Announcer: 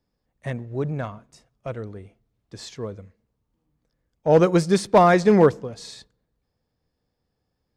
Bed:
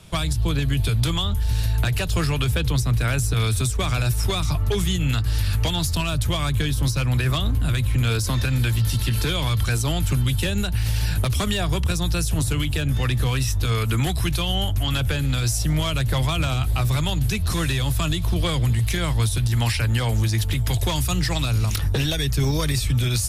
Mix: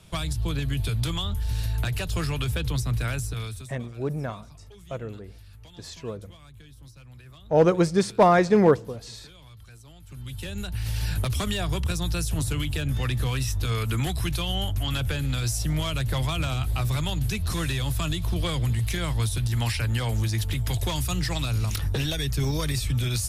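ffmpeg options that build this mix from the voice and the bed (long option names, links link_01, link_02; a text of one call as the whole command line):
ffmpeg -i stem1.wav -i stem2.wav -filter_complex "[0:a]adelay=3250,volume=-2.5dB[link_01];[1:a]volume=16.5dB,afade=type=out:start_time=3.03:duration=0.71:silence=0.0891251,afade=type=in:start_time=10.06:duration=1.04:silence=0.0794328[link_02];[link_01][link_02]amix=inputs=2:normalize=0" out.wav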